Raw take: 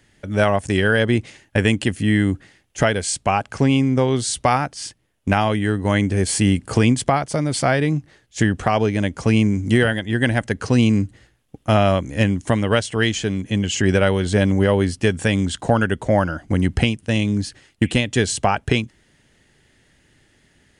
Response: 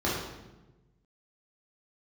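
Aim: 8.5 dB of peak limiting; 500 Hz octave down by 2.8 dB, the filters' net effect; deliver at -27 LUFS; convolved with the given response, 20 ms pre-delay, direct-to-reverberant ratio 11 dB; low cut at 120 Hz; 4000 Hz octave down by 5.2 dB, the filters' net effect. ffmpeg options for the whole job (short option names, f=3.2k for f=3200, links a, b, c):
-filter_complex "[0:a]highpass=120,equalizer=f=500:t=o:g=-3.5,equalizer=f=4k:t=o:g=-7.5,alimiter=limit=-12dB:level=0:latency=1,asplit=2[a][b];[1:a]atrim=start_sample=2205,adelay=20[c];[b][c]afir=irnorm=-1:irlink=0,volume=-22.5dB[d];[a][d]amix=inputs=2:normalize=0,volume=-3.5dB"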